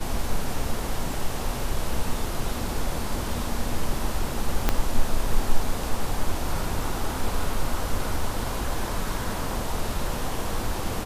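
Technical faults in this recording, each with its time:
4.69 pop -6 dBFS

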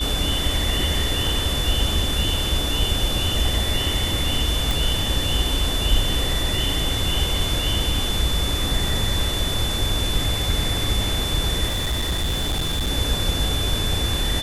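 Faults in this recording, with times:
tone 3500 Hz -26 dBFS
4.71 pop
11.66–12.91 clipped -19 dBFS

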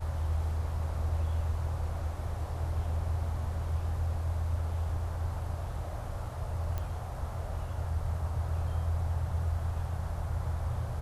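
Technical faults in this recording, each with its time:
6.78 pop -22 dBFS

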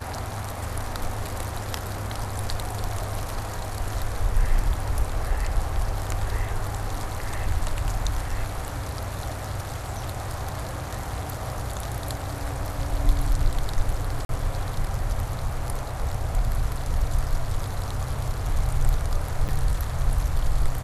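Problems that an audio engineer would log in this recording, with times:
14.25–14.29 gap 42 ms
19.48–19.49 gap 8.1 ms

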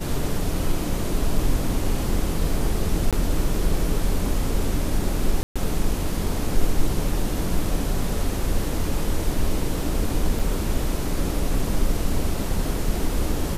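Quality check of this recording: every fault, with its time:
3.11–3.13 gap 17 ms
5.43–5.56 gap 0.126 s
10.39 gap 4.8 ms

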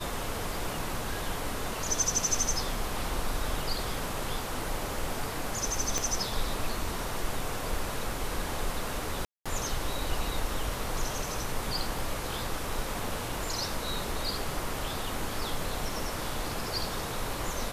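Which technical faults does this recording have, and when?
5.98 pop
9.25–9.46 gap 0.206 s
11.98 gap 2.4 ms

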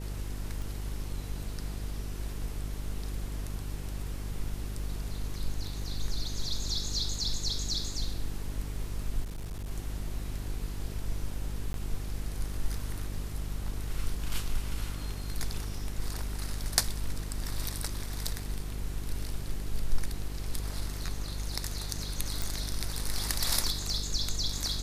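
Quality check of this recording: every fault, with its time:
buzz 50 Hz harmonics 9 -37 dBFS
0.62 pop
9.23–9.71 clipped -34 dBFS
11.73–11.74 gap 12 ms
22.42 pop

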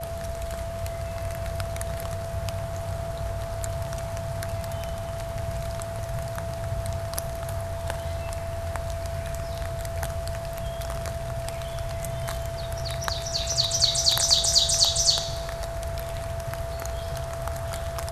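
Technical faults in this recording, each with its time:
tone 670 Hz -33 dBFS

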